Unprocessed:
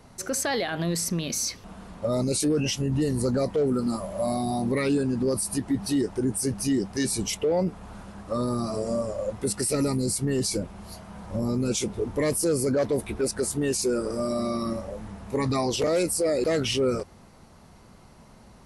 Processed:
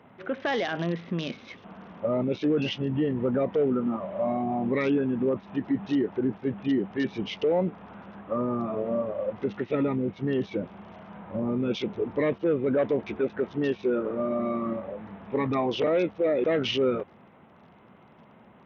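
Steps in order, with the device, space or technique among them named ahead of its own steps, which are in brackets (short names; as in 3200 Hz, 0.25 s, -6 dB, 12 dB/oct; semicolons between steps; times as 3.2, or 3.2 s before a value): Bluetooth headset (HPF 160 Hz 12 dB/oct; downsampling 8000 Hz; SBC 64 kbps 48000 Hz)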